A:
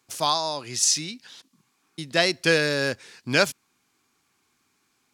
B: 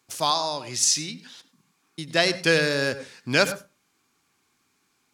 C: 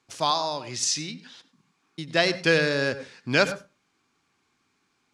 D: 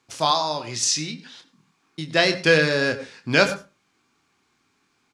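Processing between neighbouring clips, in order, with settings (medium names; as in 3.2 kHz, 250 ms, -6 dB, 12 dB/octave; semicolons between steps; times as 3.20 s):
reverberation RT60 0.30 s, pre-delay 89 ms, DRR 13 dB
distance through air 73 m
doubling 26 ms -8 dB; trim +3 dB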